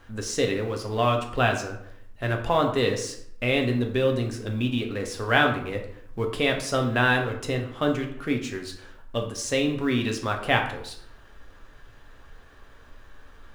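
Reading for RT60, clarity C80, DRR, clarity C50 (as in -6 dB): 0.70 s, 11.0 dB, 2.5 dB, 8.0 dB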